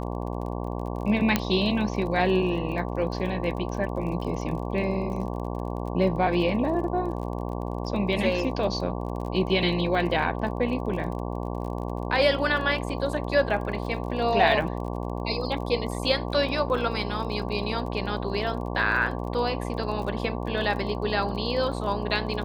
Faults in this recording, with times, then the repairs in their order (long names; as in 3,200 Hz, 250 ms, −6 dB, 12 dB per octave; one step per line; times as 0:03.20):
mains buzz 60 Hz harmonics 19 −31 dBFS
surface crackle 31 per second −35 dBFS
0:01.36: click −6 dBFS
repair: click removal
hum removal 60 Hz, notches 19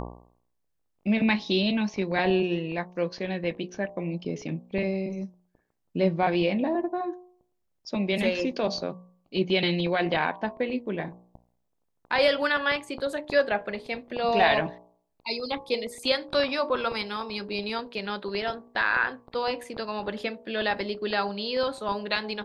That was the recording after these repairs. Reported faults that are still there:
none of them is left